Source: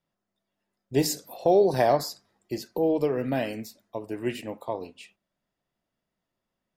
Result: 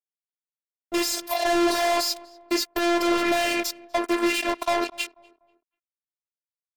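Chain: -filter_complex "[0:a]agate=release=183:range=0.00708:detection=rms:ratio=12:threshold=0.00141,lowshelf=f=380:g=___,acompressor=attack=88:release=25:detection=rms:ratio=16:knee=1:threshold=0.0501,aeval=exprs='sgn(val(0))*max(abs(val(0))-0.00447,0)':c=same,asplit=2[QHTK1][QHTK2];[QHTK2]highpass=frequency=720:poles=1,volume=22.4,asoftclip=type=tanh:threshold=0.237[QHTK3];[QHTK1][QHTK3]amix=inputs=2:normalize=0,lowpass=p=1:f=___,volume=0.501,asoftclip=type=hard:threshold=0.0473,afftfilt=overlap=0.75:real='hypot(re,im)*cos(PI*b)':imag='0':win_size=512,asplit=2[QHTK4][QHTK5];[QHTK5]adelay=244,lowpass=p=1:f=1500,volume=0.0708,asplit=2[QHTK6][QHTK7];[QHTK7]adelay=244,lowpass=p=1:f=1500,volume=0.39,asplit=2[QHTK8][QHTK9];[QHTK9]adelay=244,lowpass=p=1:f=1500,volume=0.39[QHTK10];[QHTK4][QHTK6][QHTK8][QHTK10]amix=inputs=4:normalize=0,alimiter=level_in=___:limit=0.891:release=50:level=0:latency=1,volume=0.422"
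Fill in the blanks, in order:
-11, 4800, 8.91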